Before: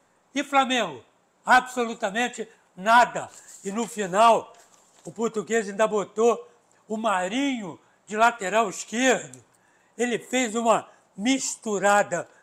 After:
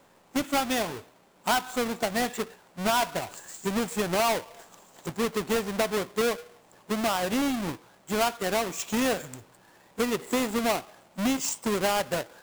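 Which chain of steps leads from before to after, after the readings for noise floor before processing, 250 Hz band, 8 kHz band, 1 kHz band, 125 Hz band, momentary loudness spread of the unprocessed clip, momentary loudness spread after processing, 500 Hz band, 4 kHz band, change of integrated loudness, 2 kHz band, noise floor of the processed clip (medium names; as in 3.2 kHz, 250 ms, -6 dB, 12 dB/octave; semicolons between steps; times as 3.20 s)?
-64 dBFS, -0.5 dB, -1.5 dB, -7.0 dB, +1.5 dB, 14 LU, 11 LU, -4.5 dB, -0.5 dB, -4.5 dB, -6.0 dB, -59 dBFS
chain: square wave that keeps the level; compression 4:1, threshold -25 dBFS, peak gain reduction 12 dB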